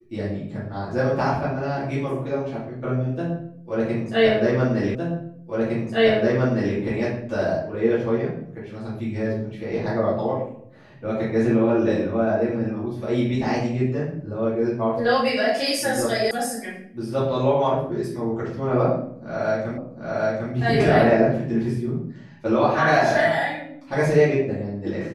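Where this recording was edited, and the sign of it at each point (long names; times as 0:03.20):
0:04.95: the same again, the last 1.81 s
0:16.31: cut off before it has died away
0:19.78: the same again, the last 0.75 s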